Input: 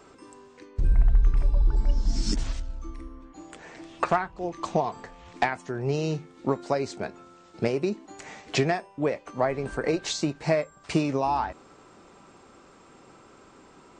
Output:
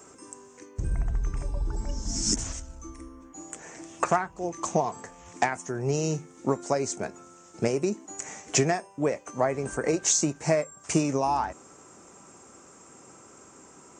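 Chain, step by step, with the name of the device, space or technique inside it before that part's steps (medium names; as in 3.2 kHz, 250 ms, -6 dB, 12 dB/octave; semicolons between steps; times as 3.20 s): budget condenser microphone (high-pass 63 Hz 12 dB/octave; resonant high shelf 5.2 kHz +8 dB, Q 3)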